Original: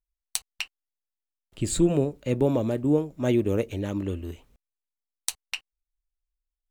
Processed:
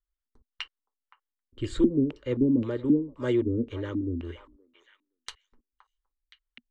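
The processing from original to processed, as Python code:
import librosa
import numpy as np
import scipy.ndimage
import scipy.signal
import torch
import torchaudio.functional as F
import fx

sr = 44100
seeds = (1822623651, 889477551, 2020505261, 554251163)

y = fx.fixed_phaser(x, sr, hz=710.0, stages=6)
y = fx.echo_stepped(y, sr, ms=519, hz=920.0, octaves=1.4, feedback_pct=70, wet_db=-8.5)
y = fx.filter_lfo_lowpass(y, sr, shape='square', hz=1.9, low_hz=240.0, high_hz=2800.0, q=6.8)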